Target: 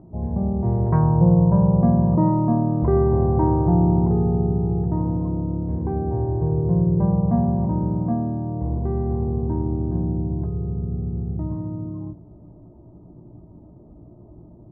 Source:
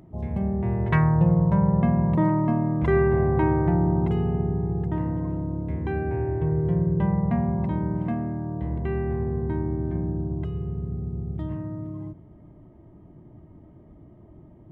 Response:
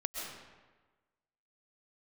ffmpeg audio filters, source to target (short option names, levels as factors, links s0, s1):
-filter_complex "[0:a]lowpass=f=1000:w=0.5412,lowpass=f=1000:w=1.3066,asplit=2[s0][s1];[s1]adelay=17,volume=0.376[s2];[s0][s2]amix=inputs=2:normalize=0,volume=1.41"